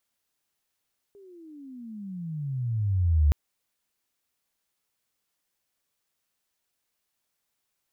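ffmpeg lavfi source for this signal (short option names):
-f lavfi -i "aevalsrc='pow(10,(-16+32*(t/2.17-1))/20)*sin(2*PI*410*2.17/(-30.5*log(2)/12)*(exp(-30.5*log(2)/12*t/2.17)-1))':d=2.17:s=44100"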